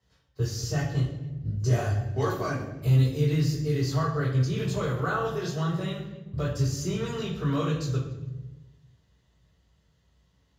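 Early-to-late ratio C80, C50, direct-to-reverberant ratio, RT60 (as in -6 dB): 7.0 dB, 5.0 dB, -6.5 dB, 1.2 s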